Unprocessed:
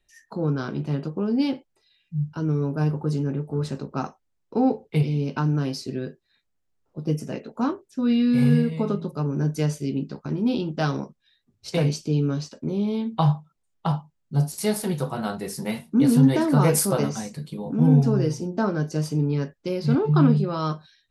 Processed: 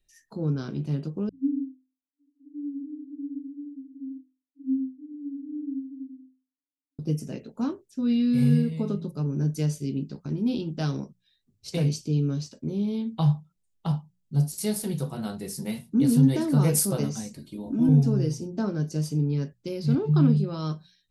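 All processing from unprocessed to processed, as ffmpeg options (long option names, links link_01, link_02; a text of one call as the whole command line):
ffmpeg -i in.wav -filter_complex "[0:a]asettb=1/sr,asplit=3[link_01][link_02][link_03];[link_01]atrim=end=1.294[link_04];[link_02]atrim=start=1.29:end=6.99,asetpts=PTS-STARTPTS,afade=type=in:duration=0.004:curve=qsin,afade=type=out:start_time=5.696:duration=0.004:curve=qsin,asuperpass=centerf=280:order=20:qfactor=6.5,aecho=1:1:86:0.708,atrim=end_sample=251370[link_05];[link_03]atrim=start=6.986[link_06];[link_04][link_05]acrossfade=duration=0.004:curve1=hsin:curve2=qsin[link_07];[link_07][link_06]acrossfade=duration=0.004:curve1=qsin:curve2=hsin,asettb=1/sr,asplit=3[link_08][link_09][link_10];[link_08]atrim=end=17.354[link_11];[link_09]atrim=start=17.35:end=17.89,asetpts=PTS-STARTPTS,afade=type=in:duration=0.004:curve=qsin,afade=type=out:start_time=0.536:duration=0.004:curve=qsin,acrossover=split=2900[link_12][link_13];[link_13]acompressor=threshold=-54dB:ratio=4:attack=1:release=60[link_14];[link_12][link_14]amix=inputs=2:normalize=0,aecho=1:1:3.2:0.83,atrim=end_sample=23814[link_15];[link_10]atrim=start=17.886[link_16];[link_11][link_15]acrossfade=duration=0.004:curve1=hsin:curve2=qsin[link_17];[link_17][link_16]acrossfade=duration=0.004:curve1=qsin:curve2=hsin,equalizer=frequency=1100:width=0.43:gain=-11,bandreject=frequency=60:width_type=h:width=6,bandreject=frequency=120:width_type=h:width=6,bandreject=frequency=180:width_type=h:width=6" out.wav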